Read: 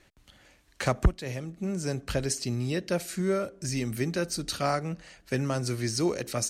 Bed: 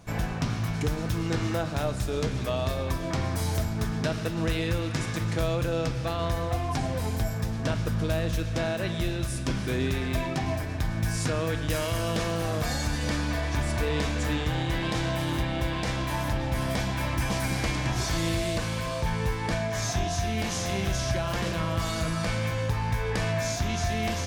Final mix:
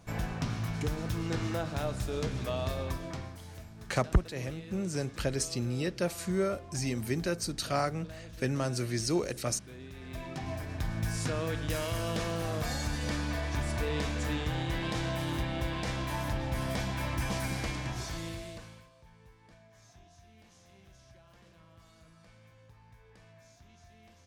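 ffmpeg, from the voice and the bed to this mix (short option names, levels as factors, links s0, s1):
-filter_complex "[0:a]adelay=3100,volume=0.75[s0];[1:a]volume=2.99,afade=t=out:st=2.82:d=0.56:silence=0.188365,afade=t=in:st=9.92:d=0.97:silence=0.188365,afade=t=out:st=17.36:d=1.54:silence=0.0562341[s1];[s0][s1]amix=inputs=2:normalize=0"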